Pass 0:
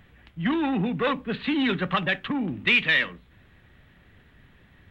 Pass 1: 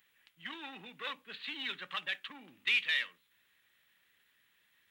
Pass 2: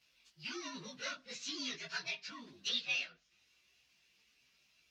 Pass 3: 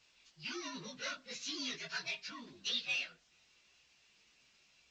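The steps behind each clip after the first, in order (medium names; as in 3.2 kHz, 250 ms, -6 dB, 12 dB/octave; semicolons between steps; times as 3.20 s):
differentiator; band-stop 710 Hz, Q 13
frequency axis rescaled in octaves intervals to 118%; low-pass that closes with the level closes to 2.6 kHz, closed at -38 dBFS; chorus voices 4, 1.4 Hz, delay 17 ms, depth 3 ms; trim +8 dB
in parallel at -6 dB: hard clipper -38.5 dBFS, distortion -8 dB; on the sum: trim -2.5 dB; A-law 128 kbps 16 kHz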